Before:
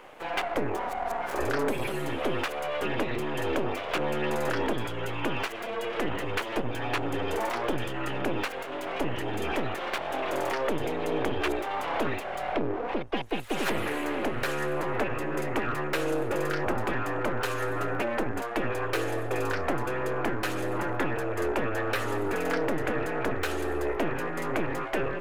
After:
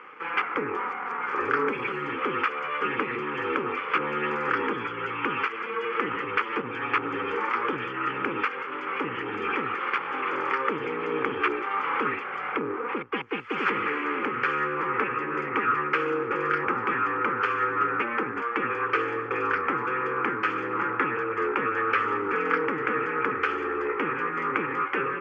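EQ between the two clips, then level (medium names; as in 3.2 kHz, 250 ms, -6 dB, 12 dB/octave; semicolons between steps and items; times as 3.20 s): cabinet simulation 200–4300 Hz, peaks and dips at 460 Hz +8 dB, 810 Hz +5 dB, 1.3 kHz +7 dB, 2.3 kHz +7 dB, 3.4 kHz +9 dB; peaking EQ 1.2 kHz +5.5 dB 0.33 oct; static phaser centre 1.6 kHz, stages 4; +1.5 dB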